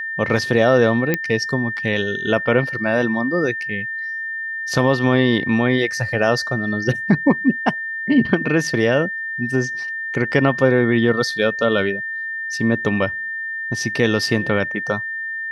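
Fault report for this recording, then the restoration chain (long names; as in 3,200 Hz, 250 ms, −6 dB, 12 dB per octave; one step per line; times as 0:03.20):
whistle 1,800 Hz −24 dBFS
0:01.14: click −5 dBFS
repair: click removal
notch filter 1,800 Hz, Q 30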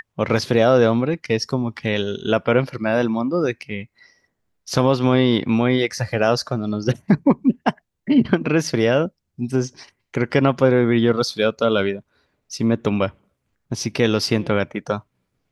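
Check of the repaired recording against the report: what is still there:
none of them is left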